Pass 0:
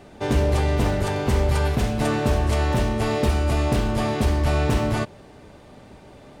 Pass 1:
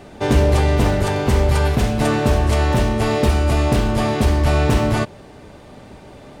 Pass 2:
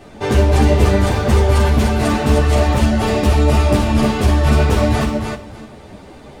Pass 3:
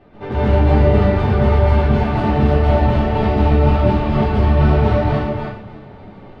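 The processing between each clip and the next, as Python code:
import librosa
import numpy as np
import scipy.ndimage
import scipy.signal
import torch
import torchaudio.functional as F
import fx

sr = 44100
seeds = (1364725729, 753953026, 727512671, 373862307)

y1 = fx.rider(x, sr, range_db=10, speed_s=2.0)
y1 = y1 * librosa.db_to_amplitude(4.5)
y2 = fx.echo_feedback(y1, sr, ms=303, feedback_pct=19, wet_db=-4.5)
y2 = fx.ensemble(y2, sr)
y2 = y2 * librosa.db_to_amplitude(4.0)
y3 = fx.air_absorb(y2, sr, metres=360.0)
y3 = fx.rev_plate(y3, sr, seeds[0], rt60_s=0.5, hf_ratio=1.0, predelay_ms=115, drr_db=-7.0)
y3 = y3 * librosa.db_to_amplitude(-7.5)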